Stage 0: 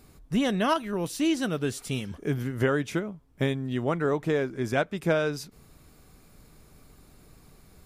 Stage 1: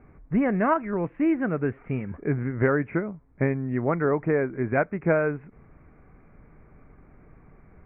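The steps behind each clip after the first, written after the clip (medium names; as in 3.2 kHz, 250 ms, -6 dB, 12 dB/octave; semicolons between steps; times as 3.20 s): steep low-pass 2.3 kHz 72 dB/octave; trim +2.5 dB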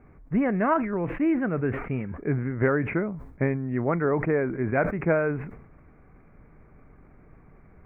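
decay stretcher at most 71 dB/s; trim -1 dB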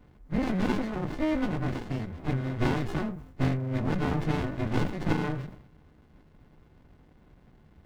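partials quantised in pitch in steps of 3 st; sliding maximum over 65 samples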